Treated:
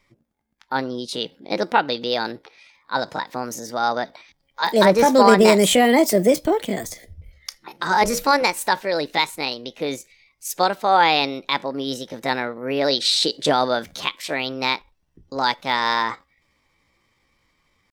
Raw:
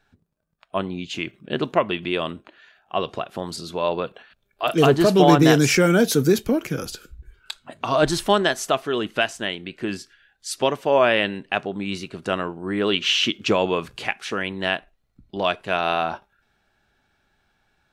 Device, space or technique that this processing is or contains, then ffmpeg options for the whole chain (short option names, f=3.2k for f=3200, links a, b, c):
chipmunk voice: -filter_complex "[0:a]asettb=1/sr,asplit=3[a][b][c];[a]atrim=end=6.924[d];[b]atrim=start=6.92:end=8.43,asetpts=PTS-STARTPTS,afade=t=in:d=0.004:c=qsin,afade=t=out:st=1.506:d=0.004:c=qsin,bandreject=f=50:t=h:w=6,bandreject=f=100:t=h:w=6,bandreject=f=150:t=h:w=6,bandreject=f=200:t=h:w=6,bandreject=f=250:t=h:w=6,bandreject=f=300:t=h:w=6,bandreject=f=350:t=h:w=6,bandreject=f=400:t=h:w=6,bandreject=f=450:t=h:w=6,bandreject=f=500:t=h:w=6[e];[c]atrim=start=8.426[f];[d][e]acrossfade=d=0.004:c1=hsin:c2=qsin[g];[g][f]acrossfade=d=0.004:c1=qsin:c2=hsin,asetrate=60591,aresample=44100,atempo=0.727827,volume=1.5dB"